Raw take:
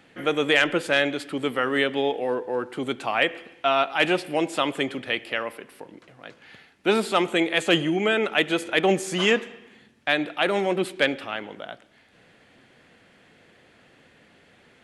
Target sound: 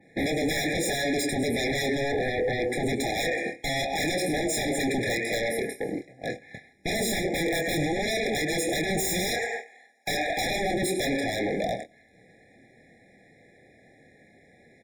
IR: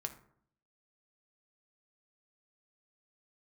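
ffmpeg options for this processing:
-filter_complex "[0:a]aecho=1:1:101|202|303:0.141|0.041|0.0119,asettb=1/sr,asplit=3[link_01][link_02][link_03];[link_01]atrim=end=7.164[link_04];[link_02]atrim=start=7.16:end=7.75,asetpts=PTS-STARTPTS,afade=type=in:duration=0.004:curve=qsin,afade=type=out:start_time=0.586:duration=0.004:curve=qsin,adynamicsmooth=sensitivity=2.5:basefreq=1300[link_05];[link_03]atrim=start=7.746[link_06];[link_04][link_05]acrossfade=duration=0.004:curve1=hsin:curve2=qsin[link_07];[link_07][link_06]acrossfade=duration=0.004:curve1=qsin:curve2=hsin,adynamicequalizer=threshold=0.00708:dfrequency=7000:dqfactor=0.73:tfrequency=7000:tqfactor=0.73:attack=5:release=100:ratio=0.375:range=4:mode=boostabove:tftype=bell,acompressor=threshold=-29dB:ratio=3,asettb=1/sr,asplit=3[link_08][link_09][link_10];[link_08]atrim=end=9.294[link_11];[link_09]atrim=start=9.29:end=10.56,asetpts=PTS-STARTPTS,afade=type=in:duration=0.004:curve=qsin,afade=type=out:start_time=1.266:duration=0.004:curve=qsin,highpass=frequency=820:width_type=q:width=3.7[link_12];[link_10]atrim=start=10.556[link_13];[link_11][link_12]acrossfade=duration=0.004:curve1=hsin:curve2=qsin[link_14];[link_14][link_13]acrossfade=duration=0.004:curve1=qsin:curve2=hsin,agate=range=-16dB:threshold=-45dB:ratio=16:detection=peak,asplit=2[link_15][link_16];[link_16]adelay=26,volume=-7dB[link_17];[link_15][link_17]amix=inputs=2:normalize=0,asoftclip=type=tanh:threshold=-24dB,equalizer=frequency=3300:width_type=o:width=0.3:gain=-11.5,aeval=exprs='0.0794*sin(PI/2*3.98*val(0)/0.0794)':channel_layout=same,afftfilt=real='re*eq(mod(floor(b*sr/1024/830),2),0)':imag='im*eq(mod(floor(b*sr/1024/830),2),0)':win_size=1024:overlap=0.75"

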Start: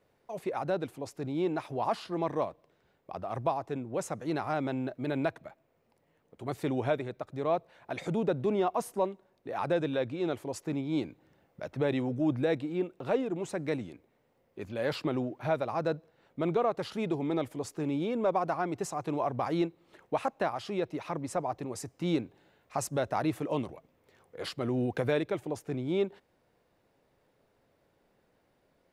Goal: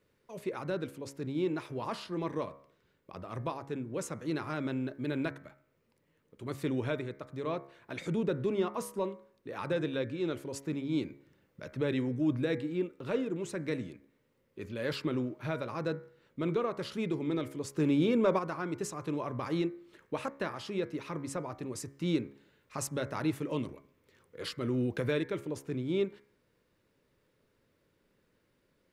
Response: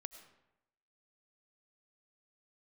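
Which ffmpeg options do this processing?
-filter_complex "[0:a]equalizer=frequency=740:width=2.8:gain=-14.5,bandreject=frequency=69.08:width_type=h:width=4,bandreject=frequency=138.16:width_type=h:width=4,bandreject=frequency=207.24:width_type=h:width=4,bandreject=frequency=276.32:width_type=h:width=4,bandreject=frequency=345.4:width_type=h:width=4,bandreject=frequency=414.48:width_type=h:width=4,bandreject=frequency=483.56:width_type=h:width=4,bandreject=frequency=552.64:width_type=h:width=4,bandreject=frequency=621.72:width_type=h:width=4,bandreject=frequency=690.8:width_type=h:width=4,bandreject=frequency=759.88:width_type=h:width=4,bandreject=frequency=828.96:width_type=h:width=4,bandreject=frequency=898.04:width_type=h:width=4,bandreject=frequency=967.12:width_type=h:width=4,bandreject=frequency=1036.2:width_type=h:width=4,bandreject=frequency=1105.28:width_type=h:width=4,bandreject=frequency=1174.36:width_type=h:width=4,bandreject=frequency=1243.44:width_type=h:width=4,bandreject=frequency=1312.52:width_type=h:width=4,bandreject=frequency=1381.6:width_type=h:width=4,bandreject=frequency=1450.68:width_type=h:width=4,bandreject=frequency=1519.76:width_type=h:width=4,bandreject=frequency=1588.84:width_type=h:width=4,bandreject=frequency=1657.92:width_type=h:width=4,bandreject=frequency=1727:width_type=h:width=4,bandreject=frequency=1796.08:width_type=h:width=4,bandreject=frequency=1865.16:width_type=h:width=4,bandreject=frequency=1934.24:width_type=h:width=4,bandreject=frequency=2003.32:width_type=h:width=4,bandreject=frequency=2072.4:width_type=h:width=4,bandreject=frequency=2141.48:width_type=h:width=4,bandreject=frequency=2210.56:width_type=h:width=4,bandreject=frequency=2279.64:width_type=h:width=4,bandreject=frequency=2348.72:width_type=h:width=4,asettb=1/sr,asplit=3[link_01][link_02][link_03];[link_01]atrim=end=17.764[link_04];[link_02]atrim=start=17.76:end=18.39,asetpts=PTS-STARTPTS,afade=type=in:duration=0.004:curve=qsin,afade=type=out:start_time=0.626:duration=0.004:curve=qsin,acontrast=47[link_05];[link_03]atrim=start=18.386[link_06];[link_04][link_05]acrossfade=duration=0.004:curve1=hsin:curve2=qsin[link_07];[link_07][link_06]acrossfade=duration=0.004:curve1=qsin:curve2=hsin"

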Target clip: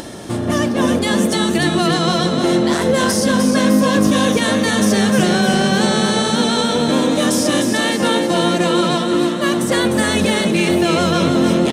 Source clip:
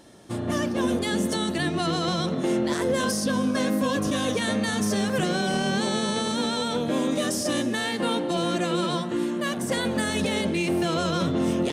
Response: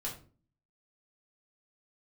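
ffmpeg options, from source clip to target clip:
-af "acompressor=mode=upward:threshold=-30dB:ratio=2.5,aecho=1:1:303|606|909|1212|1515|1818|2121:0.501|0.281|0.157|0.088|0.0493|0.0276|0.0155,volume=8.5dB"

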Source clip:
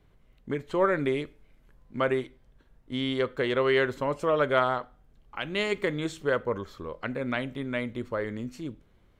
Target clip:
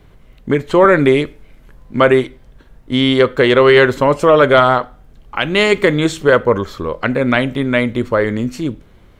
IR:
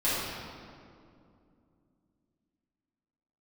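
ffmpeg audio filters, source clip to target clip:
-af "apsyclip=18dB,volume=-2dB"

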